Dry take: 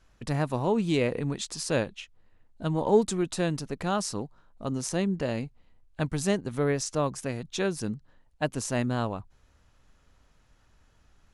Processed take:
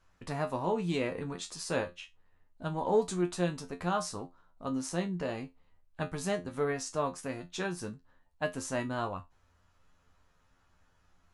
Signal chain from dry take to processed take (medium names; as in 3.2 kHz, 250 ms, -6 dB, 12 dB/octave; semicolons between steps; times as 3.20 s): peaking EQ 1.1 kHz +5.5 dB 1.4 oct; feedback comb 88 Hz, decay 0.19 s, harmonics all, mix 90%